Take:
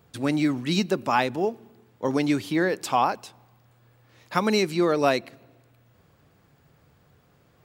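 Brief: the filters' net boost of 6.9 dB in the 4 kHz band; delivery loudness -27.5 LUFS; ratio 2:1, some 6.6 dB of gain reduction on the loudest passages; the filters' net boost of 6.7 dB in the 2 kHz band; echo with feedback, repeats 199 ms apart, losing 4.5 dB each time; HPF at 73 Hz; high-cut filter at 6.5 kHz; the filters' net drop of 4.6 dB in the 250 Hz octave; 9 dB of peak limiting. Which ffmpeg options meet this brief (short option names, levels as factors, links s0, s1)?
-af "highpass=73,lowpass=6500,equalizer=f=250:t=o:g=-6.5,equalizer=f=2000:t=o:g=7,equalizer=f=4000:t=o:g=6.5,acompressor=threshold=0.0447:ratio=2,alimiter=limit=0.112:level=0:latency=1,aecho=1:1:199|398|597|796|995|1194|1393|1592|1791:0.596|0.357|0.214|0.129|0.0772|0.0463|0.0278|0.0167|0.01,volume=1.33"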